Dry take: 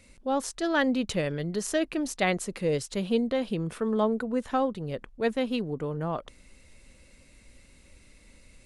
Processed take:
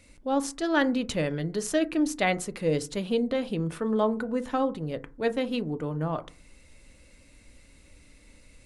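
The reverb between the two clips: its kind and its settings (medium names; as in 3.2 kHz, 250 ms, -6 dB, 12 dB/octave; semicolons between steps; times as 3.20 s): FDN reverb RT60 0.35 s, low-frequency decay 1.35×, high-frequency decay 0.35×, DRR 10.5 dB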